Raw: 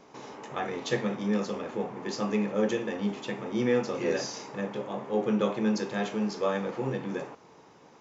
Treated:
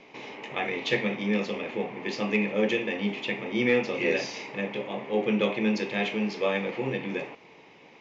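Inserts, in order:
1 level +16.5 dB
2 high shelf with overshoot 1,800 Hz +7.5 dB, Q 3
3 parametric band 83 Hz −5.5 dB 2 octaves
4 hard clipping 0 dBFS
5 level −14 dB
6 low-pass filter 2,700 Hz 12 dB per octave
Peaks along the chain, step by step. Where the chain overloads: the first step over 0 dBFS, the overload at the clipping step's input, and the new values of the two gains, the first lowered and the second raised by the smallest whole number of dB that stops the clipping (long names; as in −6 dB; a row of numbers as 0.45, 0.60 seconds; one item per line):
+3.0, +5.0, +4.5, 0.0, −14.0, −13.5 dBFS
step 1, 4.5 dB
step 1 +11.5 dB, step 5 −9 dB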